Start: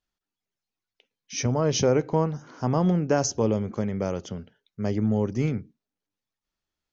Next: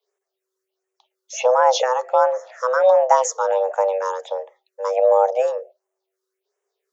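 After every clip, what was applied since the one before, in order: phaser stages 4, 1.4 Hz, lowest notch 320–3900 Hz; frequency shift +380 Hz; gain +7.5 dB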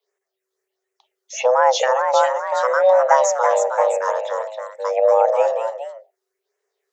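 echoes that change speed 0.506 s, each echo +1 st, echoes 2, each echo -6 dB; bell 1900 Hz +7 dB 0.42 oct

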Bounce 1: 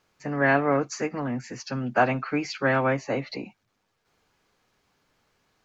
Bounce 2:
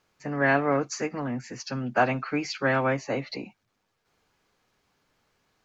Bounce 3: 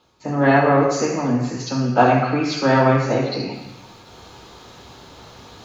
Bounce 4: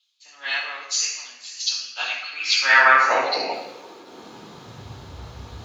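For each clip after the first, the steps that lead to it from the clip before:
dynamic EQ 5400 Hz, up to +3 dB, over -44 dBFS, Q 0.74; gain -1.5 dB
reverse; upward compressor, threshold -34 dBFS; reverse; reverb RT60 1.0 s, pre-delay 3 ms, DRR -2 dB; gain -1 dB
high-pass sweep 3300 Hz -> 65 Hz, 2.36–5.21; three-band expander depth 40%; gain +3.5 dB

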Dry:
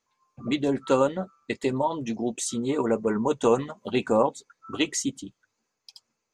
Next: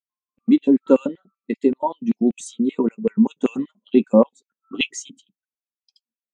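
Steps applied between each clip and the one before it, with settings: LFO high-pass square 5.2 Hz 220–2600 Hz; spectral expander 1.5:1; gain +4.5 dB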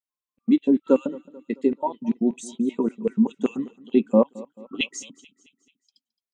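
feedback echo 0.218 s, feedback 50%, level -21 dB; gain -3.5 dB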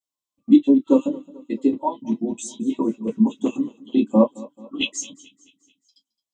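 band shelf 1800 Hz -13.5 dB 1.1 oct; reverb, pre-delay 3 ms, DRR -5 dB; gain -1.5 dB

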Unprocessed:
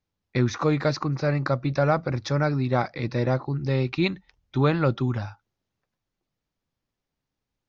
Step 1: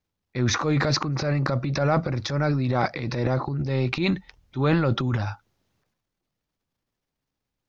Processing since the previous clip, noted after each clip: transient shaper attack -6 dB, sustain +10 dB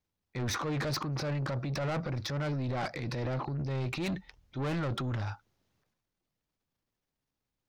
soft clip -25.5 dBFS, distortion -9 dB; gain -4 dB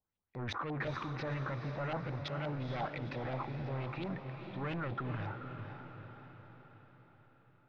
LFO low-pass saw up 5.7 Hz 730–3500 Hz; diffused feedback echo 0.468 s, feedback 55%, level -7 dB; gain -7 dB

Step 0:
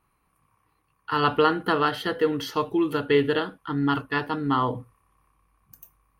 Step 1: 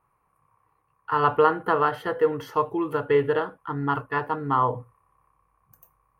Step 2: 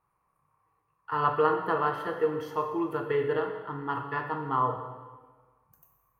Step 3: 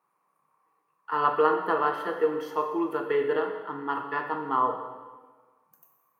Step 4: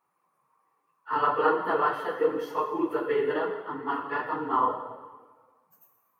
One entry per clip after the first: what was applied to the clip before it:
graphic EQ 125/250/500/1000/2000/4000 Hz +7/-4/+8/+9/+3/-9 dB; gain -6.5 dB
plate-style reverb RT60 1.4 s, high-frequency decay 0.9×, DRR 4 dB; gain -6.5 dB
HPF 200 Hz 24 dB/oct; gain +2 dB
phase scrambler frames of 50 ms

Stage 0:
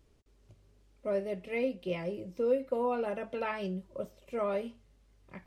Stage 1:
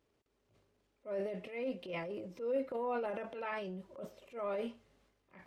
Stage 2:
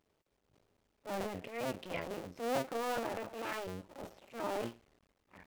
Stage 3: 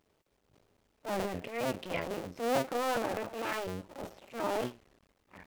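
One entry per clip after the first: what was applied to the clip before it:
HPF 380 Hz 6 dB/oct; high shelf 4100 Hz -9.5 dB; transient shaper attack -8 dB, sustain +9 dB; gain -3 dB
cycle switcher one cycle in 2, muted; gain +3 dB
record warp 33 1/3 rpm, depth 100 cents; gain +4.5 dB

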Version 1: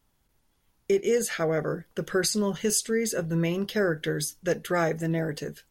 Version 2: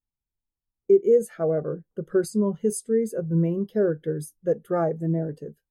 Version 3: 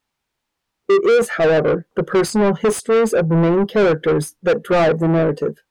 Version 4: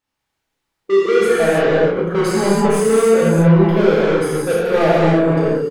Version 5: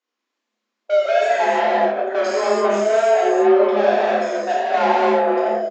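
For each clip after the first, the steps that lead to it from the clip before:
band shelf 3300 Hz -8.5 dB 2.4 oct; spectral expander 1.5:1; gain +6.5 dB
overdrive pedal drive 30 dB, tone 6400 Hz, clips at -8.5 dBFS; high shelf 5100 Hz -10.5 dB; gain +1.5 dB
doubler 31 ms -7 dB; non-linear reverb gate 0.34 s flat, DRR -7.5 dB; gain -7 dB
frequency shift +210 Hz; downsampling 16000 Hz; wow and flutter 26 cents; gain -3 dB

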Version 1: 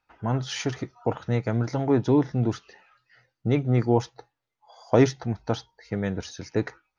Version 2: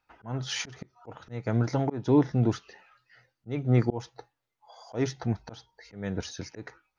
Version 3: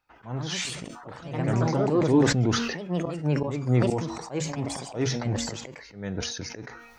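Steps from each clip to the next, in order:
auto swell 0.28 s
de-hum 234.3 Hz, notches 37; echoes that change speed 0.148 s, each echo +3 st, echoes 2; sustainer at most 45 dB/s

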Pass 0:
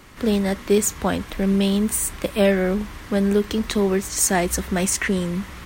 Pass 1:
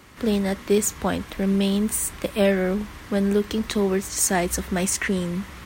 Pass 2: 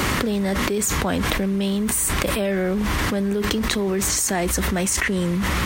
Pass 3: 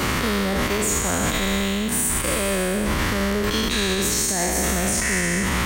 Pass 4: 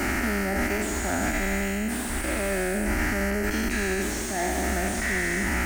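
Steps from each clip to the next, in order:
HPF 44 Hz; gain -2 dB
fast leveller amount 100%; gain -6 dB
spectral trails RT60 2.58 s; limiter -9 dBFS, peak gain reduction 10 dB; gain -3 dB
fixed phaser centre 720 Hz, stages 8; slew limiter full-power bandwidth 140 Hz

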